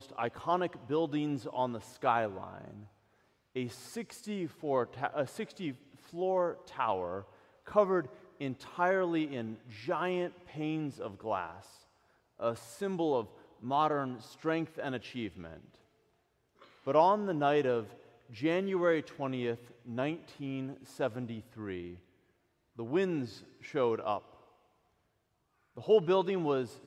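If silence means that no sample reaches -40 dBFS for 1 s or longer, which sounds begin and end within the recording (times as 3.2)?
16.87–24.19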